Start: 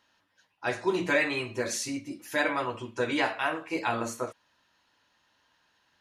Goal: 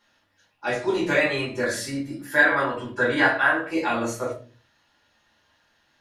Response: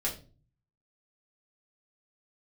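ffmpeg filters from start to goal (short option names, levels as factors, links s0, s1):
-filter_complex "[0:a]asettb=1/sr,asplit=3[s0][s1][s2];[s0]atrim=end=1.634[s3];[s1]atrim=start=1.63:end=3.72,asetpts=PTS-STARTPTS,afade=t=in:d=0.004:c=qsin,afade=t=out:st=2.086:d=0.004:c=qsin,equalizer=f=1000:t=o:w=0.33:g=4,equalizer=f=1600:t=o:w=0.33:g=12,equalizer=f=2500:t=o:w=0.33:g=-7,equalizer=f=6300:t=o:w=0.33:g=-9[s4];[s2]atrim=start=3.716[s5];[s3][s4]acrossfade=d=0.004:c1=hsin:c2=qsin[s6];[s6][s5]acrossfade=d=0.004:c1=qsin:c2=hsin[s7];[1:a]atrim=start_sample=2205,afade=t=out:st=0.45:d=0.01,atrim=end_sample=20286[s8];[s7][s8]afir=irnorm=-1:irlink=0"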